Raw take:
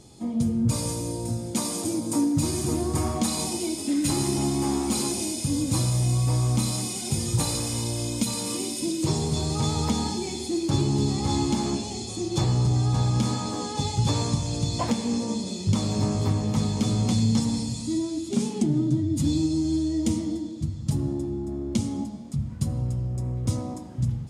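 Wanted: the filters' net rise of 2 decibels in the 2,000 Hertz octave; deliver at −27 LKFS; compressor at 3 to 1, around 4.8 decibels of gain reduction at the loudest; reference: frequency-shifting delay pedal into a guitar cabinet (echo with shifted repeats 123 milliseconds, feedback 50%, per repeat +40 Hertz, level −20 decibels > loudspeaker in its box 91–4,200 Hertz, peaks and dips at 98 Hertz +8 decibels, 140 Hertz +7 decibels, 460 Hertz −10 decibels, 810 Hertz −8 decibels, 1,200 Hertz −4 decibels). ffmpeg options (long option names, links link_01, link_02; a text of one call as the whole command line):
ffmpeg -i in.wav -filter_complex "[0:a]equalizer=frequency=2000:width_type=o:gain=3,acompressor=threshold=-25dB:ratio=3,asplit=5[link_01][link_02][link_03][link_04][link_05];[link_02]adelay=123,afreqshift=40,volume=-20dB[link_06];[link_03]adelay=246,afreqshift=80,volume=-26dB[link_07];[link_04]adelay=369,afreqshift=120,volume=-32dB[link_08];[link_05]adelay=492,afreqshift=160,volume=-38.1dB[link_09];[link_01][link_06][link_07][link_08][link_09]amix=inputs=5:normalize=0,highpass=91,equalizer=frequency=98:width_type=q:width=4:gain=8,equalizer=frequency=140:width_type=q:width=4:gain=7,equalizer=frequency=460:width_type=q:width=4:gain=-10,equalizer=frequency=810:width_type=q:width=4:gain=-8,equalizer=frequency=1200:width_type=q:width=4:gain=-4,lowpass=frequency=4200:width=0.5412,lowpass=frequency=4200:width=1.3066,volume=0.5dB" out.wav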